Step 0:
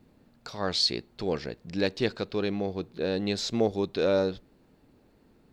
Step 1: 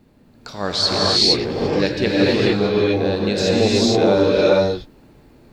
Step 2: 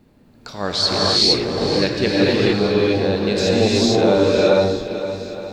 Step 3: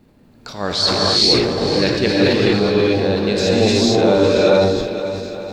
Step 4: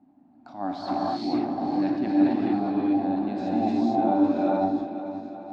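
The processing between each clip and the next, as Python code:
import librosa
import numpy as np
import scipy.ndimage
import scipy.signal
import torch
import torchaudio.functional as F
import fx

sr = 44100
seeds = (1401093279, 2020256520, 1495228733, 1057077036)

y1 = fx.rev_gated(x, sr, seeds[0], gate_ms=490, shape='rising', drr_db=-6.0)
y1 = F.gain(torch.from_numpy(y1), 5.5).numpy()
y2 = fx.echo_swing(y1, sr, ms=869, ratio=1.5, feedback_pct=33, wet_db=-12)
y3 = fx.sustainer(y2, sr, db_per_s=41.0)
y3 = F.gain(torch.from_numpy(y3), 1.0).numpy()
y4 = fx.double_bandpass(y3, sr, hz=460.0, octaves=1.4)
y4 = F.gain(torch.from_numpy(y4), 2.0).numpy()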